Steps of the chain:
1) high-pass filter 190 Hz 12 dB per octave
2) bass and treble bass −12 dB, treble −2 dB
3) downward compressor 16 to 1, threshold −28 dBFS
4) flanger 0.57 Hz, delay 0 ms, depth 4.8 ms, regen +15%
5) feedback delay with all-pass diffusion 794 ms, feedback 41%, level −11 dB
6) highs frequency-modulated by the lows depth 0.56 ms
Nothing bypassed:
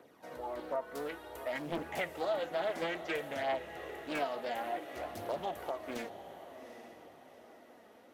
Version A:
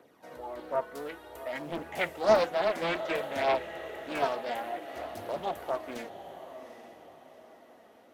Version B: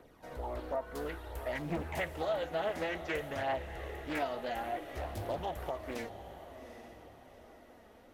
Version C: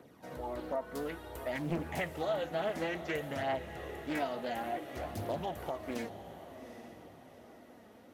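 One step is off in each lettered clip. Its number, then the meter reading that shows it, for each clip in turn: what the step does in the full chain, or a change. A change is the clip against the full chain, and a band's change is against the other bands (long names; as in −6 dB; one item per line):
3, average gain reduction 2.0 dB
1, 125 Hz band +9.5 dB
2, 125 Hz band +10.0 dB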